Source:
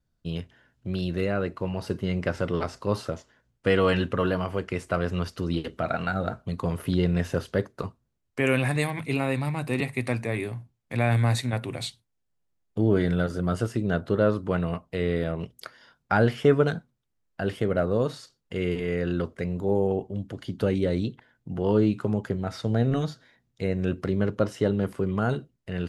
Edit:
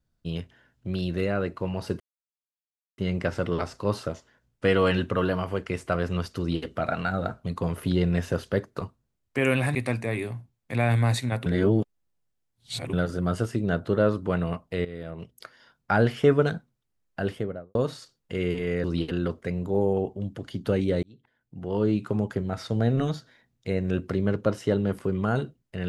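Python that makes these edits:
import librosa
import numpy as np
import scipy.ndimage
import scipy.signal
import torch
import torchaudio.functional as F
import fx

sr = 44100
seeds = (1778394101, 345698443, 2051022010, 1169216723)

y = fx.studio_fade_out(x, sr, start_s=17.41, length_s=0.55)
y = fx.edit(y, sr, fx.insert_silence(at_s=2.0, length_s=0.98),
    fx.duplicate(start_s=5.4, length_s=0.27, to_s=19.05),
    fx.cut(start_s=8.77, length_s=1.19),
    fx.reverse_span(start_s=11.67, length_s=1.47),
    fx.fade_in_from(start_s=15.06, length_s=1.42, curve='qsin', floor_db=-15.0),
    fx.fade_in_span(start_s=20.97, length_s=1.12), tone=tone)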